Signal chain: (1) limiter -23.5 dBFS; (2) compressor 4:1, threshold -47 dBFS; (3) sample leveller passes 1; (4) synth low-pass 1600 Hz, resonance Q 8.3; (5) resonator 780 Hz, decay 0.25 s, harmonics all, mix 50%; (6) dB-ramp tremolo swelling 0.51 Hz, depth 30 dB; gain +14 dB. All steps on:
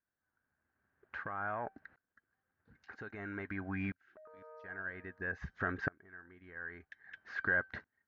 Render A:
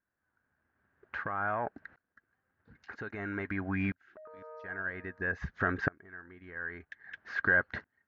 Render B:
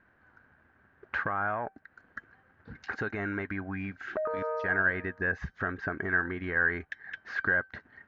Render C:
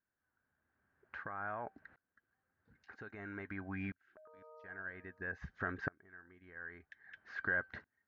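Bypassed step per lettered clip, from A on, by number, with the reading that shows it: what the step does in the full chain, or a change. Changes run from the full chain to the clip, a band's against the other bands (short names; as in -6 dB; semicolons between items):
5, loudness change +5.5 LU; 6, momentary loudness spread change -6 LU; 3, loudness change -3.5 LU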